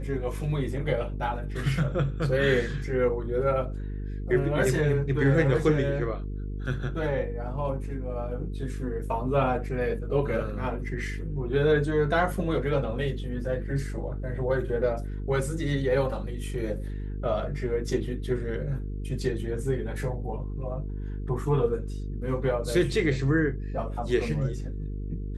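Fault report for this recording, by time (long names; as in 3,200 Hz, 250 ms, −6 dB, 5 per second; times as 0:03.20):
mains buzz 50 Hz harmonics 9 −33 dBFS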